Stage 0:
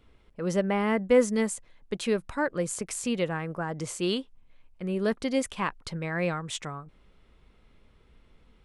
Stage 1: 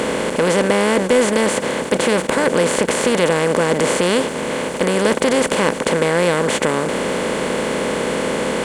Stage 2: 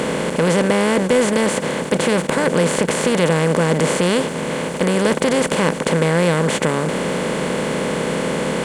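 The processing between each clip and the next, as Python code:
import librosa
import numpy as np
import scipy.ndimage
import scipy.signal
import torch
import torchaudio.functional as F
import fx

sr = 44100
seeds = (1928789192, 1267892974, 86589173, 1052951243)

y1 = fx.bin_compress(x, sr, power=0.2)
y1 = scipy.signal.sosfilt(scipy.signal.butter(2, 61.0, 'highpass', fs=sr, output='sos'), y1)
y1 = fx.leveller(y1, sr, passes=1)
y2 = fx.peak_eq(y1, sr, hz=160.0, db=8.5, octaves=0.52)
y2 = y2 * 10.0 ** (-1.5 / 20.0)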